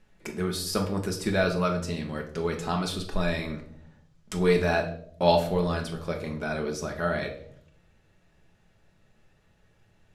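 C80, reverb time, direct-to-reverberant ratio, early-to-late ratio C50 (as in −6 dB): 13.0 dB, 0.65 s, 2.0 dB, 10.0 dB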